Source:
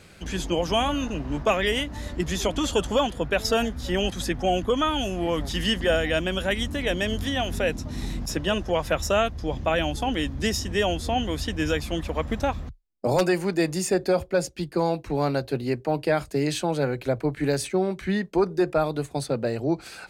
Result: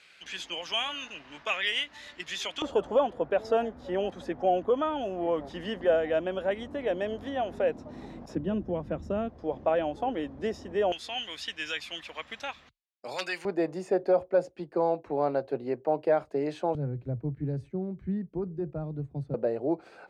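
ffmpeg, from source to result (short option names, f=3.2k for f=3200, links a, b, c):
-af "asetnsamples=n=441:p=0,asendcmd='2.62 bandpass f 590;8.35 bandpass f 230;9.29 bandpass f 560;10.92 bandpass f 2800;13.45 bandpass f 610;16.75 bandpass f 110;19.34 bandpass f 540',bandpass=f=2.7k:t=q:w=1.2:csg=0"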